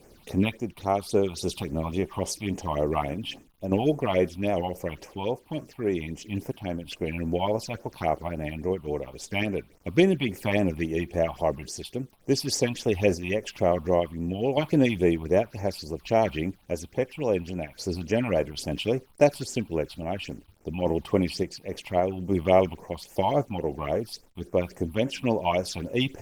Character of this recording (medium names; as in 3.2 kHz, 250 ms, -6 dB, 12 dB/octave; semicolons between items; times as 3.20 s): a quantiser's noise floor 10-bit, dither none; phasing stages 6, 3.6 Hz, lowest notch 430–4000 Hz; random-step tremolo; Opus